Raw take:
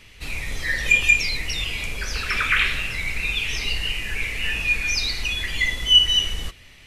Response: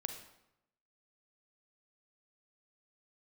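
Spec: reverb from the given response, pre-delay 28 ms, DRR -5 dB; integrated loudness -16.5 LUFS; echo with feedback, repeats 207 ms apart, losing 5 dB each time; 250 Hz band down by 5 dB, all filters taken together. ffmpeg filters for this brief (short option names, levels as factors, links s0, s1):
-filter_complex "[0:a]equalizer=f=250:t=o:g=-7.5,aecho=1:1:207|414|621|828|1035|1242|1449:0.562|0.315|0.176|0.0988|0.0553|0.031|0.0173,asplit=2[s0][s1];[1:a]atrim=start_sample=2205,adelay=28[s2];[s1][s2]afir=irnorm=-1:irlink=0,volume=1.88[s3];[s0][s3]amix=inputs=2:normalize=0,volume=0.708"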